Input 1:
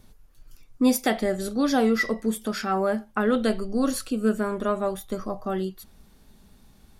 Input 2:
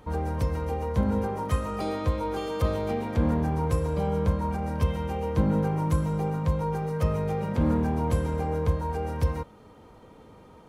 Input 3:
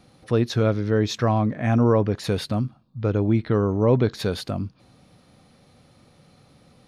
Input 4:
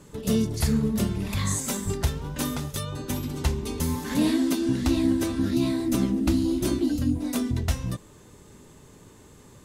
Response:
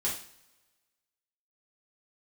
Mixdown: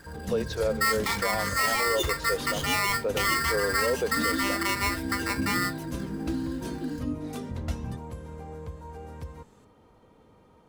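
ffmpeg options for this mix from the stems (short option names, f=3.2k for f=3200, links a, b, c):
-filter_complex "[0:a]acrossover=split=5200[a][b];[b]acompressor=threshold=-45dB:ratio=4:attack=1:release=60[c];[a][c]amix=inputs=2:normalize=0,aeval=exprs='val(0)*sgn(sin(2*PI*1600*n/s))':c=same,volume=-1dB[d];[1:a]acompressor=threshold=-34dB:ratio=2,volume=-7dB[e];[2:a]highpass=f=400:w=0.5412,highpass=f=400:w=1.3066,equalizer=f=510:t=o:w=0.41:g=10,volume=-7.5dB[f];[3:a]highshelf=f=8.4k:g=-7.5,aphaser=in_gain=1:out_gain=1:delay=4.7:decay=0.38:speed=0.37:type=triangular,volume=-9.5dB[g];[d][e][f][g]amix=inputs=4:normalize=0,alimiter=limit=-17.5dB:level=0:latency=1:release=24"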